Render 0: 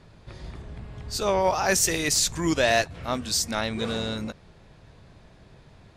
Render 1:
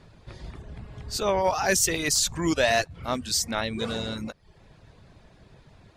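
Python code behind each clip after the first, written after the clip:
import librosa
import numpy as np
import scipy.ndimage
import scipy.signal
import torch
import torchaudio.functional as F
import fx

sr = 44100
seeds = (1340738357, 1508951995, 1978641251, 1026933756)

y = fx.dereverb_blind(x, sr, rt60_s=0.55)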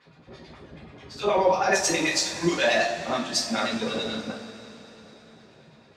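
y = fx.filter_lfo_bandpass(x, sr, shape='sine', hz=9.3, low_hz=250.0, high_hz=3900.0, q=1.2)
y = fx.rev_double_slope(y, sr, seeds[0], early_s=0.4, late_s=4.2, knee_db=-18, drr_db=-6.5)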